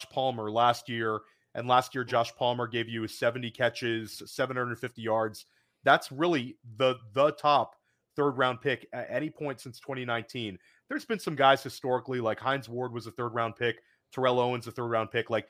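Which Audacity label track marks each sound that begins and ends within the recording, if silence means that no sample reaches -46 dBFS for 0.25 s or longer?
1.550000	5.420000	sound
5.850000	7.730000	sound
8.170000	10.560000	sound
10.900000	13.780000	sound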